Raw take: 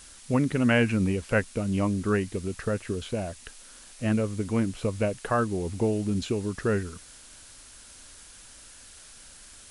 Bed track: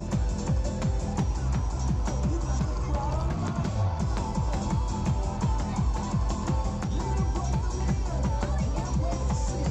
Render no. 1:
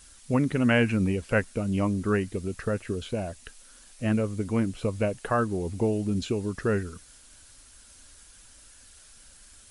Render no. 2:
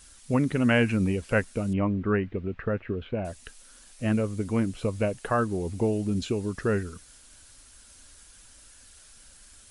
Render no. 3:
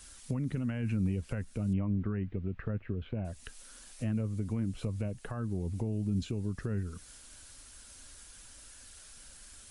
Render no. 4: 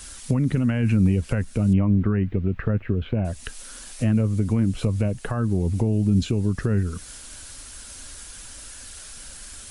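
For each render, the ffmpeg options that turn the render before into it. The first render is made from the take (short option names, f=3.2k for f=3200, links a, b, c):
-af "afftdn=nr=6:nf=-50"
-filter_complex "[0:a]asettb=1/sr,asplit=3[a][b][c];[a]atrim=end=1.734[d];[b]atrim=start=1.73:end=3.25,asetpts=PTS-STARTPTS,afade=t=in:d=0.004:c=qsin,afade=t=out:st=1.516:d=0.004:c=qsin,lowpass=f=2.7k:w=0.5412,lowpass=f=2.7k:w=1.3066[e];[c]atrim=start=3.246[f];[d][e]acrossfade=d=0.004:c1=hsin:c2=qsin[g];[g][f]acrossfade=d=0.004:c1=qsin:c2=hsin"
-filter_complex "[0:a]alimiter=limit=-20.5dB:level=0:latency=1:release=18,acrossover=split=210[a][b];[b]acompressor=threshold=-42dB:ratio=6[c];[a][c]amix=inputs=2:normalize=0"
-af "volume=12dB"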